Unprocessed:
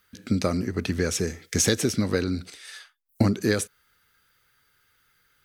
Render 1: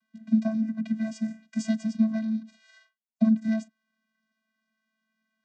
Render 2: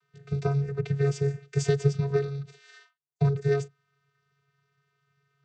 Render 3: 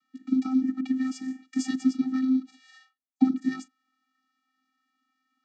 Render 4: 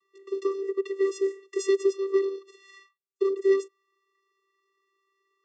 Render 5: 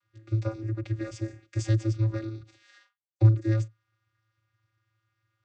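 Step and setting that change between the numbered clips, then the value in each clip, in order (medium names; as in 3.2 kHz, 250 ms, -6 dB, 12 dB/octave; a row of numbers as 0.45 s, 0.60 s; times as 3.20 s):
vocoder, frequency: 220 Hz, 140 Hz, 260 Hz, 390 Hz, 110 Hz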